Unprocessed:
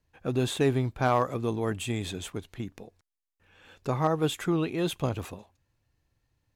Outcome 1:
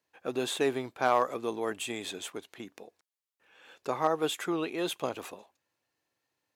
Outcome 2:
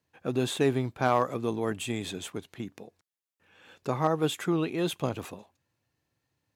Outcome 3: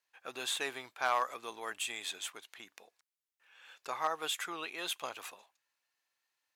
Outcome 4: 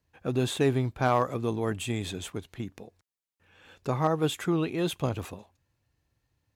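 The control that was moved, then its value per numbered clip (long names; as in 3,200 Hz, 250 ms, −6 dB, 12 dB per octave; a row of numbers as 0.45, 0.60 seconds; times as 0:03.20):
high-pass filter, corner frequency: 370, 140, 1,100, 45 Hertz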